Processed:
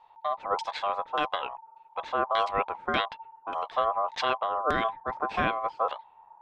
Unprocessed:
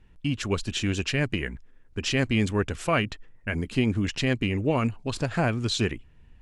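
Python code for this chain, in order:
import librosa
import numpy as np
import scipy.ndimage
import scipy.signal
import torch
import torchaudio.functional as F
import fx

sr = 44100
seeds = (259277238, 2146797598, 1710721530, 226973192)

y = fx.filter_lfo_lowpass(x, sr, shape='saw_down', hz=1.7, low_hz=400.0, high_hz=5000.0, q=1.1)
y = y * np.sin(2.0 * np.pi * 900.0 * np.arange(len(y)) / sr)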